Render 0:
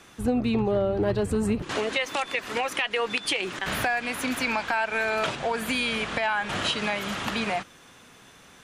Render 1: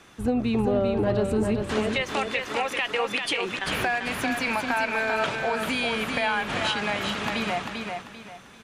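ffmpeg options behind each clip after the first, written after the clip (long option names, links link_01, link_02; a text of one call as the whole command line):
ffmpeg -i in.wav -af "highshelf=frequency=5700:gain=-5,aecho=1:1:393|786|1179|1572:0.562|0.169|0.0506|0.0152" out.wav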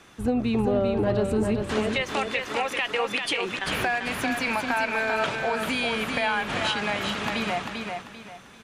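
ffmpeg -i in.wav -af anull out.wav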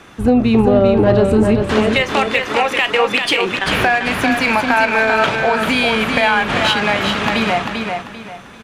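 ffmpeg -i in.wav -filter_complex "[0:a]asplit=2[link_01][link_02];[link_02]adelay=36,volume=-14dB[link_03];[link_01][link_03]amix=inputs=2:normalize=0,asplit=2[link_04][link_05];[link_05]adynamicsmooth=sensitivity=5.5:basefreq=4000,volume=-2dB[link_06];[link_04][link_06]amix=inputs=2:normalize=0,volume=6dB" out.wav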